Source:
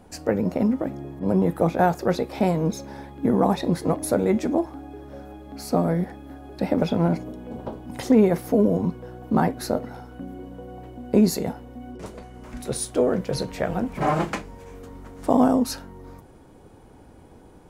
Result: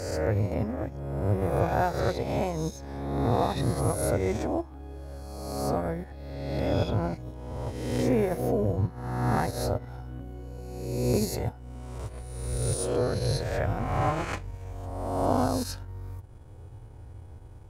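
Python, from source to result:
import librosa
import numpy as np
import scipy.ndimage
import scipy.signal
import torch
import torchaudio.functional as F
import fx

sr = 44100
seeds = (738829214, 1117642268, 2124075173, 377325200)

y = fx.spec_swells(x, sr, rise_s=1.37)
y = fx.low_shelf_res(y, sr, hz=140.0, db=9.5, q=3.0)
y = fx.transient(y, sr, attack_db=-2, sustain_db=-7)
y = y * librosa.db_to_amplitude(-7.0)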